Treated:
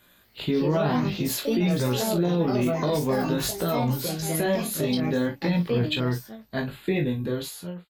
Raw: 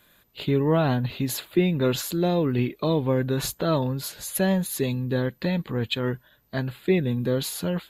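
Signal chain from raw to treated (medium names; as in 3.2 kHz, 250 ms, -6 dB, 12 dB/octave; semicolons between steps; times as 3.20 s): fade out at the end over 0.87 s; doubling 40 ms -9 dB; ever faster or slower copies 232 ms, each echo +4 st, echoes 2, each echo -6 dB; chorus 0.51 Hz, delay 16.5 ms, depth 3.7 ms; peak limiter -19 dBFS, peak gain reduction 9 dB; trim +3.5 dB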